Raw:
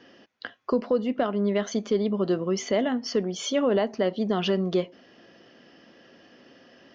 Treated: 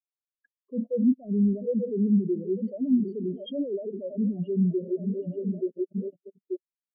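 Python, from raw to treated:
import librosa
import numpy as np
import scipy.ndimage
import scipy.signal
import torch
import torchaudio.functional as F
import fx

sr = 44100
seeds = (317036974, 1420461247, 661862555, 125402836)

p1 = fx.reverse_delay_fb(x, sr, ms=441, feedback_pct=67, wet_db=-10.5)
p2 = scipy.signal.sosfilt(scipy.signal.bessel(2, 2800.0, 'lowpass', norm='mag', fs=sr, output='sos'), p1)
p3 = fx.over_compress(p2, sr, threshold_db=-34.0, ratio=-1.0)
p4 = p2 + F.gain(torch.from_numpy(p3), 0.0).numpy()
p5 = fx.leveller(p4, sr, passes=3)
p6 = fx.level_steps(p5, sr, step_db=21)
p7 = fx.env_phaser(p6, sr, low_hz=400.0, high_hz=1500.0, full_db=-21.5)
p8 = fx.spectral_expand(p7, sr, expansion=4.0)
y = F.gain(torch.from_numpy(p8), -3.0).numpy()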